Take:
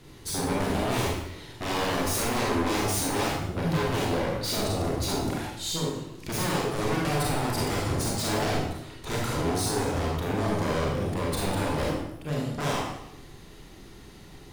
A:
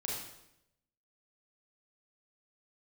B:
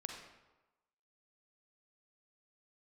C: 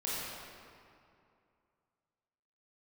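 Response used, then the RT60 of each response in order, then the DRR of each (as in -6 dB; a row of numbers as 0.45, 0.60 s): A; 0.80, 1.1, 2.5 s; -3.5, 1.5, -8.5 dB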